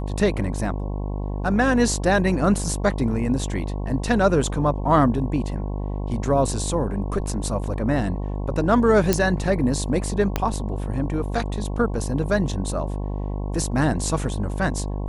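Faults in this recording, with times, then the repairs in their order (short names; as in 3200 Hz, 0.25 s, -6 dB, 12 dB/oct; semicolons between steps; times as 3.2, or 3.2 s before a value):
buzz 50 Hz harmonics 22 -27 dBFS
9.13 pop -3 dBFS
10.36 pop -7 dBFS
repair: de-click; de-hum 50 Hz, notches 22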